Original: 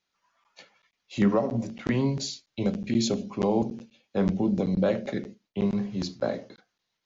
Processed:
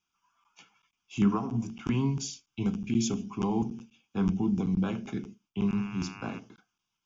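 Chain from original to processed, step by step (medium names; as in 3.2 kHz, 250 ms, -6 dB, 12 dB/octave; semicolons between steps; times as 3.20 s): 5.67–6.38 s: mains buzz 100 Hz, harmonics 28, -44 dBFS 0 dB/octave; static phaser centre 2.8 kHz, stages 8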